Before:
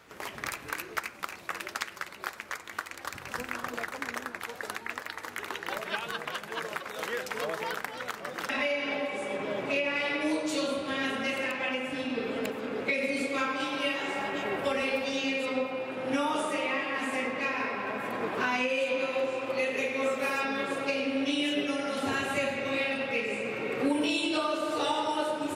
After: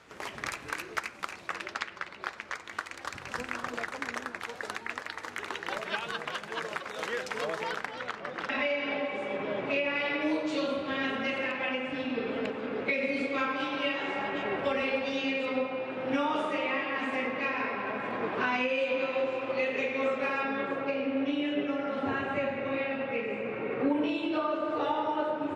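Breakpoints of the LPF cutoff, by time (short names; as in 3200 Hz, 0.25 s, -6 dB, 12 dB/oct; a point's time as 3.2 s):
1.33 s 8600 Hz
1.92 s 3700 Hz
2.92 s 7800 Hz
7.57 s 7800 Hz
8.23 s 3600 Hz
19.99 s 3600 Hz
20.87 s 1900 Hz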